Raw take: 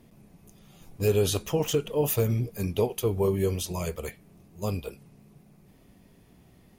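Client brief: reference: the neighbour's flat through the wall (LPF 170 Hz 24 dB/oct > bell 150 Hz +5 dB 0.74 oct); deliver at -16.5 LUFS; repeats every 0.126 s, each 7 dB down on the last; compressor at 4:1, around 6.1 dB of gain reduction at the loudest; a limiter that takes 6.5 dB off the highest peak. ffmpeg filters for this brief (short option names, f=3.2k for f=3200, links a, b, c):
-af "acompressor=threshold=-27dB:ratio=4,alimiter=level_in=0.5dB:limit=-24dB:level=0:latency=1,volume=-0.5dB,lowpass=f=170:w=0.5412,lowpass=f=170:w=1.3066,equalizer=f=150:t=o:w=0.74:g=5,aecho=1:1:126|252|378|504|630:0.447|0.201|0.0905|0.0407|0.0183,volume=20dB"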